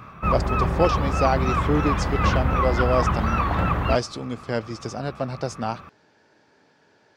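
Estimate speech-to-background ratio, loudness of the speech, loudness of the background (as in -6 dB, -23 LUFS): -3.5 dB, -27.0 LUFS, -23.5 LUFS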